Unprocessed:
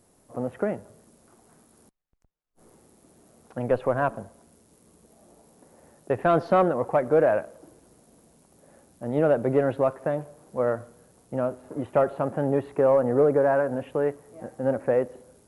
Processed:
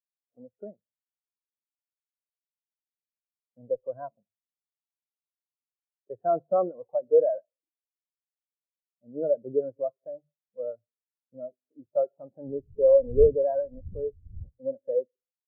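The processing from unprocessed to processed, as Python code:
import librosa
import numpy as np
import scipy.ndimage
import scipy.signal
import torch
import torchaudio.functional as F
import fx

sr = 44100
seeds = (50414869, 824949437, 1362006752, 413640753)

y = fx.dmg_wind(x, sr, seeds[0], corner_hz=110.0, level_db=-21.0, at=(12.47, 14.69), fade=0.02)
y = fx.hum_notches(y, sr, base_hz=50, count=3)
y = fx.spectral_expand(y, sr, expansion=2.5)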